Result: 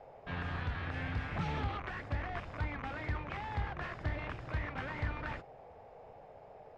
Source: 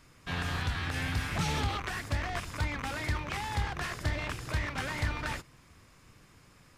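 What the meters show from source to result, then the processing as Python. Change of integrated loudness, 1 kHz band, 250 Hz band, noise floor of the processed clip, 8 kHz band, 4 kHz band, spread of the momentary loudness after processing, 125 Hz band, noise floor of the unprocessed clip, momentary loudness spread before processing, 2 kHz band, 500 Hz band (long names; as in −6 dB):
−5.5 dB, −4.5 dB, −4.5 dB, −55 dBFS, below −20 dB, −12.5 dB, 17 LU, −4.5 dB, −59 dBFS, 4 LU, −6.0 dB, −3.0 dB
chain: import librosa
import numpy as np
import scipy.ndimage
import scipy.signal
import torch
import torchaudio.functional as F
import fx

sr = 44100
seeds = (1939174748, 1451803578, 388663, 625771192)

y = scipy.signal.sosfilt(scipy.signal.butter(2, 2300.0, 'lowpass', fs=sr, output='sos'), x)
y = fx.dmg_noise_band(y, sr, seeds[0], low_hz=420.0, high_hz=850.0, level_db=-50.0)
y = y * librosa.db_to_amplitude(-4.5)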